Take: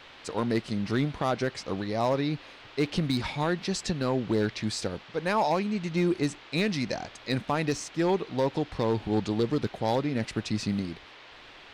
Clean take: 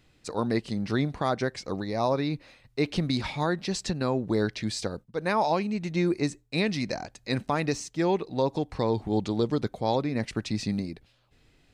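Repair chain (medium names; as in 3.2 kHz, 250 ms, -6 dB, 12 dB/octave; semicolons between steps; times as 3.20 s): clip repair -18.5 dBFS; noise print and reduce 12 dB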